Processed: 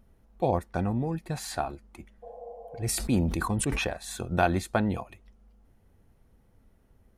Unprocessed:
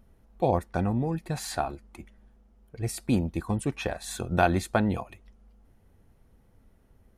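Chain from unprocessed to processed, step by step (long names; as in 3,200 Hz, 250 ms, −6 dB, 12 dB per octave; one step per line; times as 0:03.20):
0:02.26–0:02.82: healed spectral selection 460–1,100 Hz after
0:02.76–0:03.89: level that may fall only so fast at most 29 dB per second
level −1.5 dB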